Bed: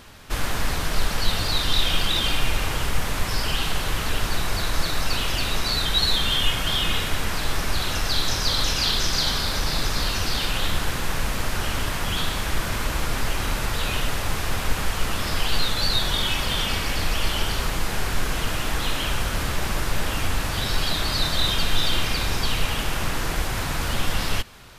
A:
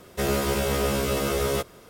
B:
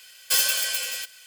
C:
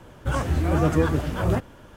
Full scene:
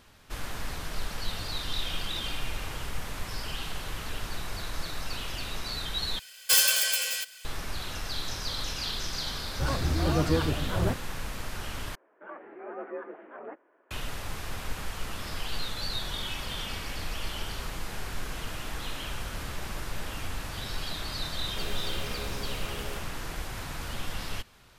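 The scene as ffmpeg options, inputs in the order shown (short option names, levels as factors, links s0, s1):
-filter_complex "[3:a]asplit=2[s0][s1];[0:a]volume=0.282[s2];[s1]highpass=f=270:t=q:w=0.5412,highpass=f=270:t=q:w=1.307,lowpass=f=2200:t=q:w=0.5176,lowpass=f=2200:t=q:w=0.7071,lowpass=f=2200:t=q:w=1.932,afreqshift=55[s3];[s2]asplit=3[s4][s5][s6];[s4]atrim=end=6.194[s7];[2:a]atrim=end=1.26[s8];[s5]atrim=start=7.446:end=11.954[s9];[s3]atrim=end=1.96,asetpts=PTS-STARTPTS,volume=0.178[s10];[s6]atrim=start=13.906[s11];[s0]atrim=end=1.96,asetpts=PTS-STARTPTS,volume=0.562,afade=t=in:d=0.004:c=hsin,afade=t=out:st=1.956:d=0.004:c=hsin,adelay=9340[s12];[1:a]atrim=end=1.89,asetpts=PTS-STARTPTS,volume=0.15,afade=t=in:d=0.004:c=hsin,afade=t=out:st=1.886:d=0.004:c=hsin,adelay=21380[s13];[s7][s8]acrossfade=d=0.004:c1=hsin:c2=hsin[s14];[s14][s9]acrossfade=d=0.004:c1=hsin:c2=hsin[s15];[s15][s10]acrossfade=d=0.004:c1=hsin:c2=hsin[s16];[s16][s11]acrossfade=d=0.004:c1=hsin:c2=hsin[s17];[s17][s12][s13]amix=inputs=3:normalize=0"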